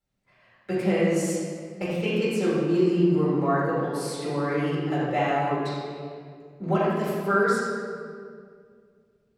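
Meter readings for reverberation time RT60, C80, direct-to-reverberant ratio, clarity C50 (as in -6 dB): 2.1 s, 0.0 dB, -9.5 dB, -2.5 dB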